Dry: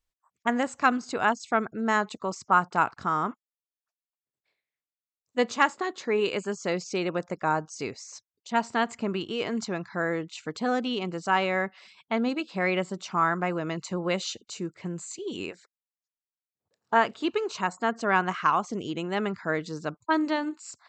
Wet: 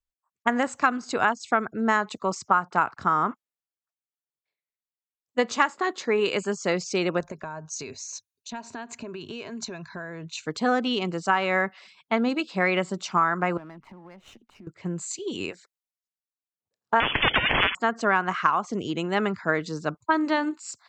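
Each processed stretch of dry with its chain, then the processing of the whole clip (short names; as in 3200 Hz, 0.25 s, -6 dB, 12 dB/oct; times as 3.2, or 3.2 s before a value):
7.2–10.43 ripple EQ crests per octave 1.5, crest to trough 8 dB + compressor 16:1, threshold -33 dBFS
13.57–14.67 speaker cabinet 140–2500 Hz, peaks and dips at 230 Hz +8 dB, 470 Hz -8 dB, 880 Hz +8 dB + compressor 8:1, threshold -42 dBFS + running maximum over 5 samples
17–17.75 low shelf 450 Hz +10.5 dB + inverted band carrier 3200 Hz + spectral compressor 10:1
whole clip: dynamic EQ 1400 Hz, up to +4 dB, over -33 dBFS, Q 0.89; compressor 6:1, threshold -24 dBFS; three-band expander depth 40%; gain +5 dB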